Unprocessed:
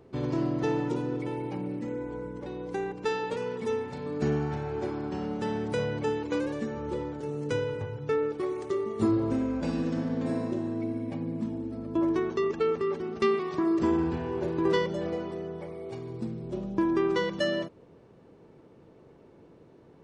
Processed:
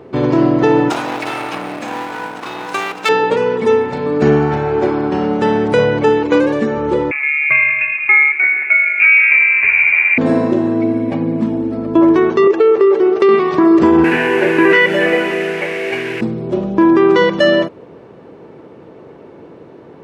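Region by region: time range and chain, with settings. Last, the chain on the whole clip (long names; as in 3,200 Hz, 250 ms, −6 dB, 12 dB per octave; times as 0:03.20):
0:00.90–0:03.09: lower of the sound and its delayed copy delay 0.77 ms + high-pass filter 51 Hz + spectral tilt +4.5 dB per octave
0:07.11–0:10.18: dynamic equaliser 1,600 Hz, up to −5 dB, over −51 dBFS, Q 1.4 + voice inversion scrambler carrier 2,600 Hz
0:12.47–0:13.29: low shelf with overshoot 280 Hz −9 dB, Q 3 + downward compressor, threshold −24 dBFS
0:14.04–0:16.21: linear delta modulator 64 kbit/s, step −42.5 dBFS + high-pass filter 190 Hz + flat-topped bell 2,100 Hz +15 dB 1.1 octaves
whole clip: high-pass filter 110 Hz 6 dB per octave; bass and treble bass −4 dB, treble −10 dB; boost into a limiter +19.5 dB; level −1 dB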